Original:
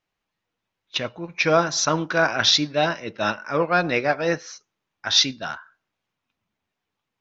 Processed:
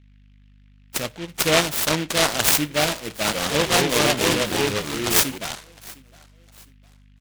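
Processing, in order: gate with hold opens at -49 dBFS; hum 50 Hz, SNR 27 dB; feedback delay 708 ms, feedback 37%, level -22 dB; 3.12–5.38 s: ever faster or slower copies 133 ms, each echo -3 st, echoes 3; delay time shaken by noise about 2.3 kHz, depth 0.19 ms

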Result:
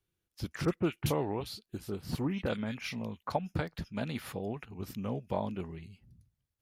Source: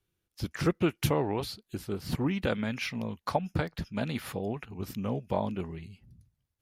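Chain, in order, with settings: 0.65–3.32 s: bands offset in time lows, highs 30 ms, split 1.9 kHz; trim -3.5 dB

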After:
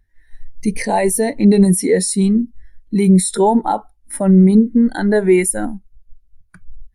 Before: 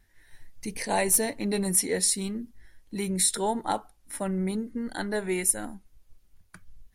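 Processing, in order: loudness maximiser +21.5 dB; spectral contrast expander 1.5:1; trim -1 dB

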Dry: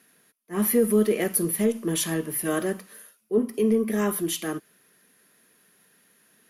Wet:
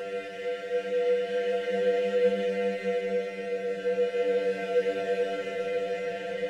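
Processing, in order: sorted samples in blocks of 256 samples; vowel filter e; band-stop 830 Hz, Q 5.4; robot voice 98 Hz; chorus 2.4 Hz, delay 15.5 ms, depth 2.1 ms; Paulstretch 14×, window 0.25 s, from 0.63 s; reverberation RT60 1.5 s, pre-delay 6 ms, DRR 4 dB; trim +7.5 dB

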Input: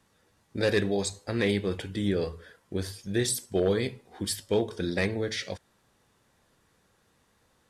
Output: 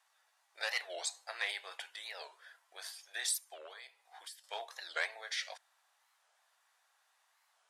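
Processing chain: elliptic high-pass 700 Hz, stop band 70 dB; 3.37–4.44 s: compression 12:1, threshold -44 dBFS, peak gain reduction 16.5 dB; warped record 45 rpm, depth 250 cents; trim -3.5 dB

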